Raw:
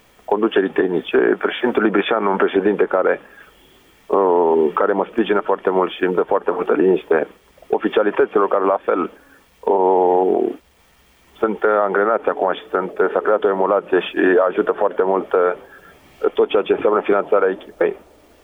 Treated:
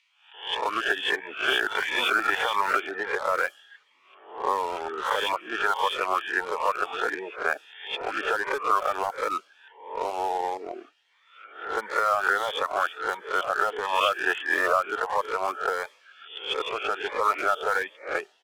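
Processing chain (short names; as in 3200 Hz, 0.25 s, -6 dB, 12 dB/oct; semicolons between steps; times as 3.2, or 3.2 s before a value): spectral swells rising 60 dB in 0.62 s; reverb removal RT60 0.87 s; HPF 1300 Hz 12 dB/oct; bands offset in time highs, lows 0.34 s, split 2400 Hz; in parallel at -9.5 dB: sample gate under -26 dBFS; on the sum: low-pass opened by the level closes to 2000 Hz, open at -20 dBFS; cascading phaser rising 1.5 Hz; gain +2 dB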